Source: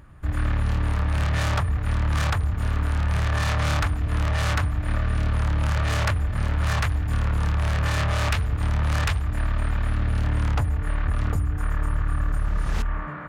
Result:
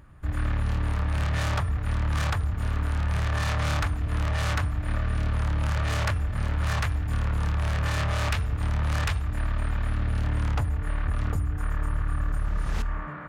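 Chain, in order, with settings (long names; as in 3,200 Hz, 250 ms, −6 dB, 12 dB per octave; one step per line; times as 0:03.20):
hum removal 337.4 Hz, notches 29
level −3 dB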